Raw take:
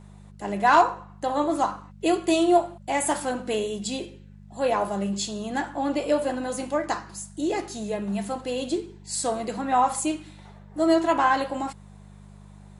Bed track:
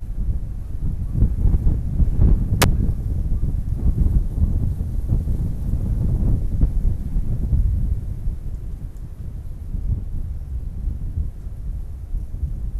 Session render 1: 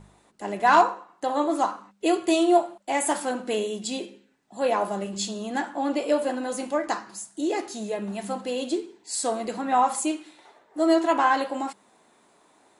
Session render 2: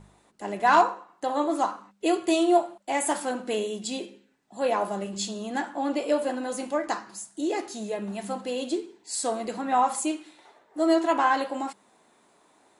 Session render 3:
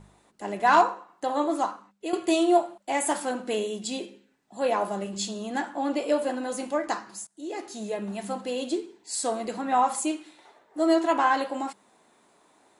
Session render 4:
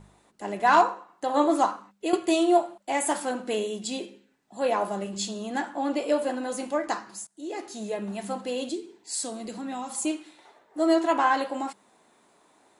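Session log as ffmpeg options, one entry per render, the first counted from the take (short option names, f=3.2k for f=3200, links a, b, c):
-af "bandreject=f=50:t=h:w=4,bandreject=f=100:t=h:w=4,bandreject=f=150:t=h:w=4,bandreject=f=200:t=h:w=4"
-af "volume=-1.5dB"
-filter_complex "[0:a]asplit=3[a][b][c];[a]atrim=end=2.13,asetpts=PTS-STARTPTS,afade=t=out:st=1.49:d=0.64:silence=0.334965[d];[b]atrim=start=2.13:end=7.27,asetpts=PTS-STARTPTS,afade=t=in:d=0.004:c=hsin:silence=0.334965,afade=t=out:st=5.136:d=0.004:c=hsin:silence=0.0944061[e];[c]atrim=start=7.27,asetpts=PTS-STARTPTS,afade=t=in:d=0.6:silence=0.0944061[f];[d][e][f]concat=n=3:v=0:a=1"
-filter_complex "[0:a]asettb=1/sr,asplit=3[a][b][c];[a]atrim=end=8.694[d];[b]atrim=start=8.69:end=10.05,asetpts=PTS-STARTPTS,afade=t=in:d=0.004:c=qsin,afade=t=out:st=1.356:d=0.004:c=qsin,acrossover=split=330|3000[e][f][g];[f]acompressor=threshold=-48dB:ratio=2:attack=3.2:release=140:knee=2.83:detection=peak[h];[e][h][g]amix=inputs=3:normalize=0[i];[c]atrim=start=10.046[j];[d][i]acrossfade=d=0.004:c1=hsin:c2=qsin[k];[k][j]acrossfade=d=0.004:c1=qsin:c2=hsin,asplit=3[l][m][n];[l]atrim=end=1.342[o];[m]atrim=start=1.338:end=2.162,asetpts=PTS-STARTPTS,volume=4dB[p];[n]atrim=start=2.158[q];[o][p]acrossfade=d=0.004:c1=hsin:c2=hsin[r];[r][q]acrossfade=d=0.004:c1=hsin:c2=hsin"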